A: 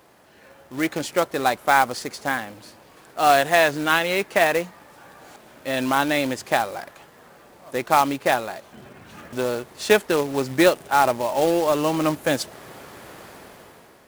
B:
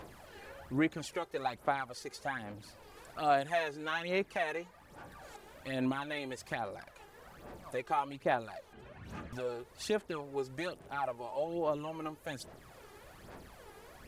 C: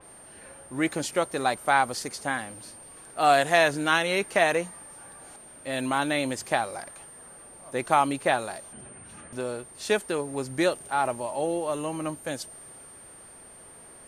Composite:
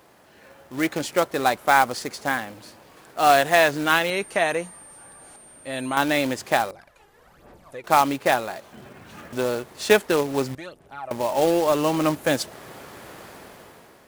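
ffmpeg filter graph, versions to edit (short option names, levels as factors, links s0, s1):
-filter_complex "[1:a]asplit=2[s0][s1];[0:a]asplit=4[s2][s3][s4][s5];[s2]atrim=end=4.102[s6];[2:a]atrim=start=4.098:end=5.972[s7];[s3]atrim=start=5.968:end=6.712[s8];[s0]atrim=start=6.708:end=7.842[s9];[s4]atrim=start=7.838:end=10.552[s10];[s1]atrim=start=10.548:end=11.112[s11];[s5]atrim=start=11.108[s12];[s6][s7]acrossfade=d=0.004:c1=hsin:c2=hsin[s13];[s13][s8]acrossfade=d=0.004:c1=hsin:c2=hsin[s14];[s14][s9]acrossfade=d=0.004:c1=hsin:c2=hsin[s15];[s15][s10]acrossfade=d=0.004:c1=hsin:c2=hsin[s16];[s16][s11]acrossfade=d=0.004:c1=hsin:c2=hsin[s17];[s17][s12]acrossfade=d=0.004:c1=hsin:c2=hsin"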